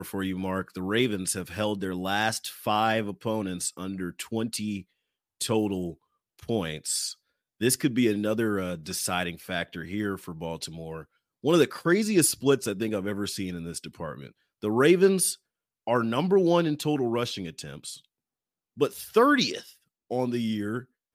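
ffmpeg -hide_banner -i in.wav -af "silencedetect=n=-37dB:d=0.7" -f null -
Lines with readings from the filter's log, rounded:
silence_start: 17.96
silence_end: 18.78 | silence_duration: 0.82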